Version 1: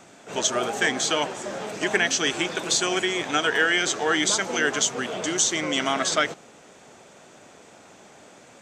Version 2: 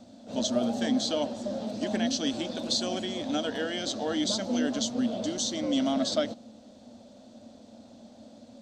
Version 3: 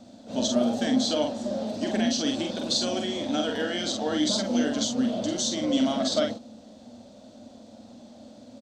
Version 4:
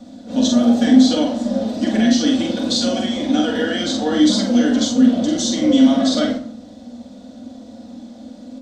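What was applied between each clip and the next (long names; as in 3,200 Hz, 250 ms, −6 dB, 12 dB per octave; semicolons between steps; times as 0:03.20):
drawn EQ curve 110 Hz 0 dB, 160 Hz −15 dB, 230 Hz +10 dB, 400 Hz −17 dB, 570 Hz −1 dB, 820 Hz −12 dB, 1,200 Hz −19 dB, 2,300 Hz −22 dB, 4,200 Hz −3 dB, 7,000 Hz −17 dB; level +3 dB
double-tracking delay 46 ms −4 dB; level +1.5 dB
convolution reverb RT60 0.55 s, pre-delay 3 ms, DRR −1 dB; level +3 dB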